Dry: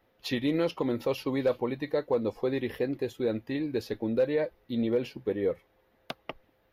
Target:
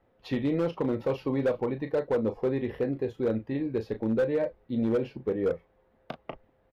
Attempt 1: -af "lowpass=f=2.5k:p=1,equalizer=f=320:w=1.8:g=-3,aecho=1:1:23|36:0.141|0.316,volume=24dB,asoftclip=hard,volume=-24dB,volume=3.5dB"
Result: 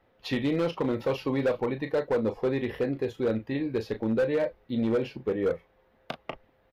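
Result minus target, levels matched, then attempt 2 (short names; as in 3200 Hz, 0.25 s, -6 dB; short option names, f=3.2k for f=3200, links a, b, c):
2000 Hz band +4.0 dB
-af "lowpass=f=840:p=1,equalizer=f=320:w=1.8:g=-3,aecho=1:1:23|36:0.141|0.316,volume=24dB,asoftclip=hard,volume=-24dB,volume=3.5dB"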